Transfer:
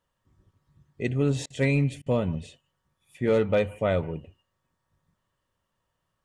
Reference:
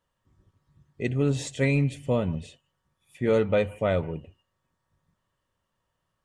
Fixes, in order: clip repair -14.5 dBFS; interpolate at 1.46/2.02, 41 ms

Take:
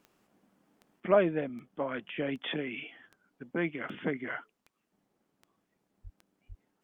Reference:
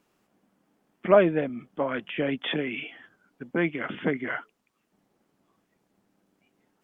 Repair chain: de-click; 6.03–6.15 HPF 140 Hz 24 dB/oct; 6.48–6.6 HPF 140 Hz 24 dB/oct; gain 0 dB, from 1 s +6 dB

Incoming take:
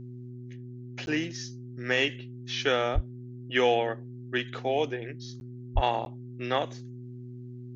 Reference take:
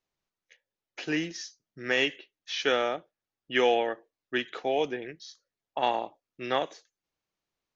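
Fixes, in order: de-hum 123.2 Hz, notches 3; 2.94–3.06 HPF 140 Hz 24 dB/oct; 5.74–5.86 HPF 140 Hz 24 dB/oct; interpolate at 1.06/5.4/6.05, 11 ms

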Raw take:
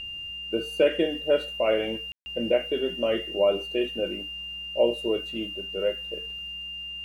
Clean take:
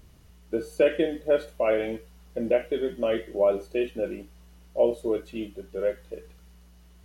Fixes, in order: notch 2800 Hz, Q 30; room tone fill 2.12–2.26

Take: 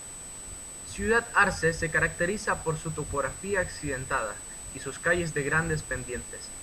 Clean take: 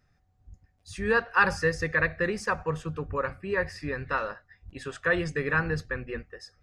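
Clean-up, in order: notch 8000 Hz, Q 30; denoiser 24 dB, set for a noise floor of -42 dBFS

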